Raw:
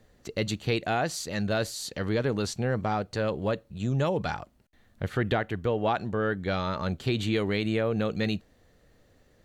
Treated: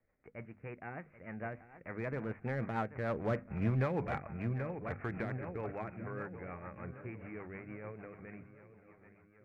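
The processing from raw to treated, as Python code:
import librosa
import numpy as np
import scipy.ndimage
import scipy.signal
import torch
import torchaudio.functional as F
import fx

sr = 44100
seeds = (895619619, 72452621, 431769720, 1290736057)

p1 = fx.envelope_flatten(x, sr, power=0.6)
p2 = fx.doppler_pass(p1, sr, speed_mps=19, closest_m=2.3, pass_at_s=3.52)
p3 = scipy.signal.sosfilt(scipy.signal.butter(16, 2400.0, 'lowpass', fs=sr, output='sos'), p2)
p4 = fx.hum_notches(p3, sr, base_hz=50, count=5)
p5 = p4 + fx.echo_feedback(p4, sr, ms=786, feedback_pct=55, wet_db=-14.0, dry=0)
p6 = fx.rider(p5, sr, range_db=4, speed_s=0.5)
p7 = 10.0 ** (-39.0 / 20.0) * (np.abs((p6 / 10.0 ** (-39.0 / 20.0) + 3.0) % 4.0 - 2.0) - 1.0)
p8 = p6 + (p7 * librosa.db_to_amplitude(-11.0))
p9 = fx.rotary(p8, sr, hz=6.7)
y = p9 * librosa.db_to_amplitude(7.0)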